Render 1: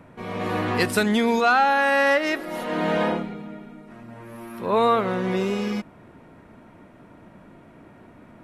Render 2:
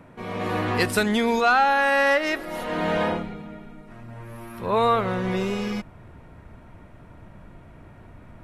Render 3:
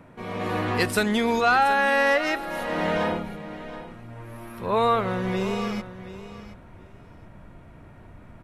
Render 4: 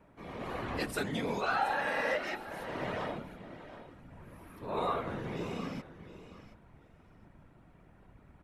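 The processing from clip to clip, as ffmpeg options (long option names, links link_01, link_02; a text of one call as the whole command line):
ffmpeg -i in.wav -af "asubboost=boost=6.5:cutoff=95" out.wav
ffmpeg -i in.wav -af "aecho=1:1:724|1448:0.2|0.0339,volume=-1dB" out.wav
ffmpeg -i in.wav -af "afftfilt=real='hypot(re,im)*cos(2*PI*random(0))':imag='hypot(re,im)*sin(2*PI*random(1))':win_size=512:overlap=0.75,volume=-5.5dB" out.wav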